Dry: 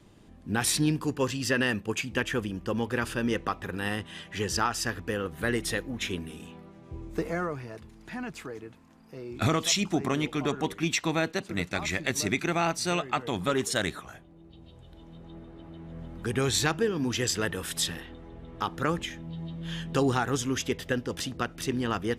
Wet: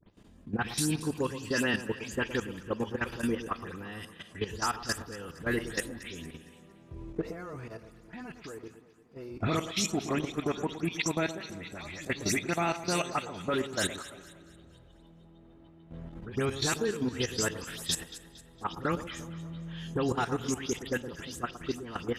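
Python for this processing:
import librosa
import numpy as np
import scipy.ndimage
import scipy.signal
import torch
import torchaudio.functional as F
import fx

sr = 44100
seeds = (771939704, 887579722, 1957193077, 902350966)

y = fx.spec_delay(x, sr, highs='late', ms=142)
y = fx.level_steps(y, sr, step_db=14)
y = fx.echo_alternate(y, sr, ms=115, hz=1200.0, feedback_pct=64, wet_db=-11.5)
y = fx.rev_spring(y, sr, rt60_s=2.5, pass_ms=(39, 53), chirp_ms=50, drr_db=20.0)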